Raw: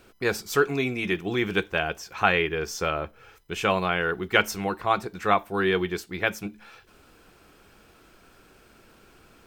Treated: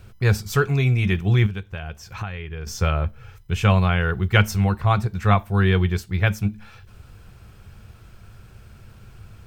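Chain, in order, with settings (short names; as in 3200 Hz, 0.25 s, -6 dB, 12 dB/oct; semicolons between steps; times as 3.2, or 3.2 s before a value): resonant low shelf 160 Hz +13.5 dB, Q 3; 1.46–2.67 compressor 8:1, threshold -30 dBFS, peak gain reduction 17 dB; small resonant body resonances 210 Hz, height 13 dB, ringing for 85 ms; gain +1 dB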